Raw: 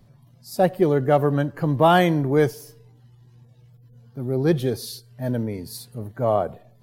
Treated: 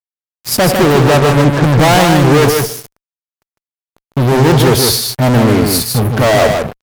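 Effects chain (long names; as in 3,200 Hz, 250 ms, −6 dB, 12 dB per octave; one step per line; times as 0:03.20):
0:00.96–0:01.65: low-pass filter 1,300 Hz
fuzz pedal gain 36 dB, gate −42 dBFS
single-tap delay 153 ms −4.5 dB
level +5 dB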